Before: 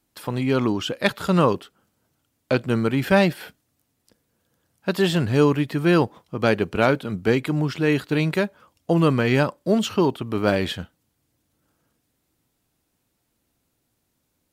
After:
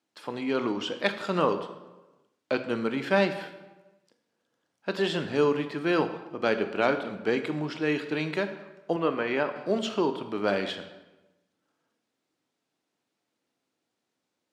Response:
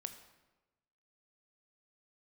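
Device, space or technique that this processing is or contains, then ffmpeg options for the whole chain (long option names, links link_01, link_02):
supermarket ceiling speaker: -filter_complex "[0:a]highpass=270,lowpass=5900[link_01];[1:a]atrim=start_sample=2205[link_02];[link_01][link_02]afir=irnorm=-1:irlink=0,asettb=1/sr,asplit=3[link_03][link_04][link_05];[link_03]atrim=end=8.964[link_06];[link_04]atrim=start=8.96:end=9.56,asetpts=PTS-STARTPTS,afade=type=in:duration=0.004:curve=qsin,afade=type=out:start_time=0.596:duration=0.004:curve=qsin,bass=frequency=250:gain=-8,treble=frequency=4000:gain=-13[link_07];[link_05]atrim=start=9.556[link_08];[link_06][link_07]acrossfade=duration=0.004:curve1=hsin:curve2=qsin[link_09];[link_09][link_08]acrossfade=duration=0.004:curve1=qsin:curve2=hsin,volume=-1.5dB"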